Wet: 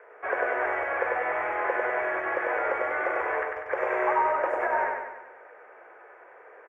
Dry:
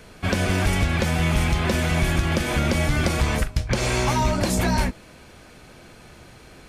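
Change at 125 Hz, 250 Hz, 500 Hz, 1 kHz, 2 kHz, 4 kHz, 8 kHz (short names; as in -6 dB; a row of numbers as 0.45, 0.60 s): under -35 dB, -18.0 dB, +0.5 dB, +1.5 dB, -0.5 dB, under -25 dB, under -35 dB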